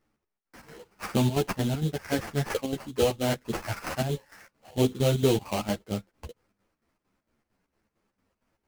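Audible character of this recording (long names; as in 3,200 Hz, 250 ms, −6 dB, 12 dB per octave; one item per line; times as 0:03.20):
aliases and images of a low sample rate 3,600 Hz, jitter 20%
chopped level 4.4 Hz, depth 65%, duty 65%
a shimmering, thickened sound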